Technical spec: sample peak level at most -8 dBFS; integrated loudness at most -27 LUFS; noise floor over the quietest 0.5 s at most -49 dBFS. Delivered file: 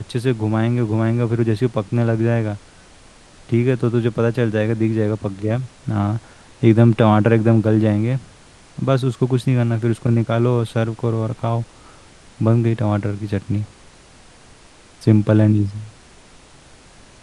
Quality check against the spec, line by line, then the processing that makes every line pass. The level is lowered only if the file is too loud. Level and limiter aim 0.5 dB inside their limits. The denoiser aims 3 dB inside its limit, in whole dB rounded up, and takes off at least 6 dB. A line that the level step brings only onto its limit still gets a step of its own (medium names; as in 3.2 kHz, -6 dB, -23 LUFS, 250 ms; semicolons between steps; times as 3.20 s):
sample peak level -2.0 dBFS: fail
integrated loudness -19.0 LUFS: fail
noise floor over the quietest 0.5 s -46 dBFS: fail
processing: trim -8.5 dB